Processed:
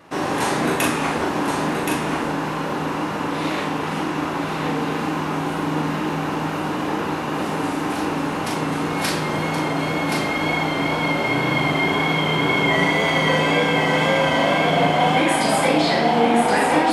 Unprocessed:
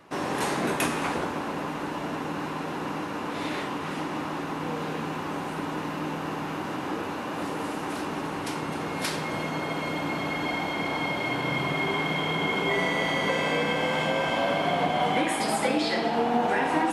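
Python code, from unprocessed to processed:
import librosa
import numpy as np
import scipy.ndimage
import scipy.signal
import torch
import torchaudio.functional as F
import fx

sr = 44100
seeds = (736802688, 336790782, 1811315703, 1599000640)

y = fx.wow_flutter(x, sr, seeds[0], rate_hz=2.1, depth_cents=28.0)
y = fx.doubler(y, sr, ms=39.0, db=-4.5)
y = y + 10.0 ** (-5.0 / 20.0) * np.pad(y, (int(1074 * sr / 1000.0), 0))[:len(y)]
y = F.gain(torch.from_numpy(y), 5.0).numpy()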